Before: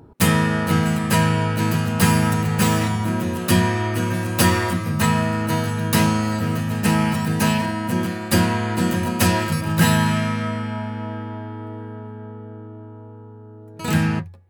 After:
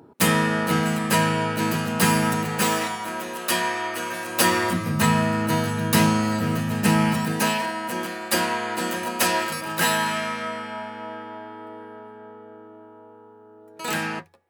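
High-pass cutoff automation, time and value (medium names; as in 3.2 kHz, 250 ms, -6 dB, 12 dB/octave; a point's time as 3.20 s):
2.40 s 210 Hz
3.02 s 540 Hz
4.23 s 540 Hz
4.83 s 130 Hz
7.10 s 130 Hz
7.61 s 420 Hz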